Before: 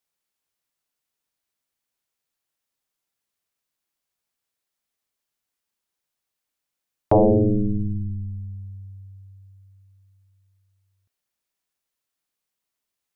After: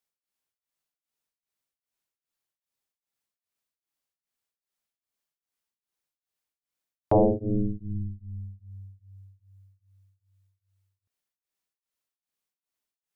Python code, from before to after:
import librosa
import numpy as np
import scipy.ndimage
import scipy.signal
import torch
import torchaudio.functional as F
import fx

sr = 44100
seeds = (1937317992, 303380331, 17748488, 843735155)

y = x * np.abs(np.cos(np.pi * 2.5 * np.arange(len(x)) / sr))
y = y * 10.0 ** (-3.5 / 20.0)